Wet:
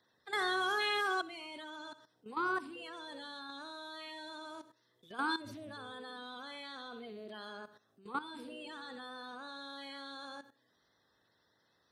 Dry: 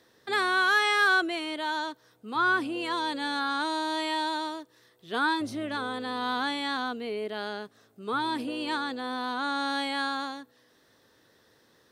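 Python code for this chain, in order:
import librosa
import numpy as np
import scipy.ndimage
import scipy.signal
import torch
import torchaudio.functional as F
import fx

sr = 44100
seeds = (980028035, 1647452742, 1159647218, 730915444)

y = fx.spec_quant(x, sr, step_db=30)
y = fx.echo_feedback(y, sr, ms=65, feedback_pct=39, wet_db=-11.5)
y = fx.level_steps(y, sr, step_db=14)
y = y * 10.0 ** (-5.0 / 20.0)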